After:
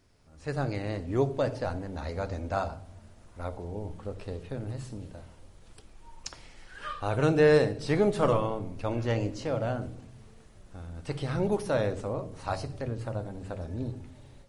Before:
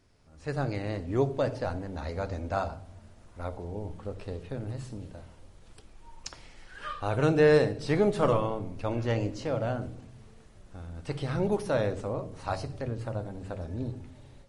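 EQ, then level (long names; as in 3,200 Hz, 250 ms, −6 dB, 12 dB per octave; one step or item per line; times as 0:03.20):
high-shelf EQ 9,200 Hz +4 dB
0.0 dB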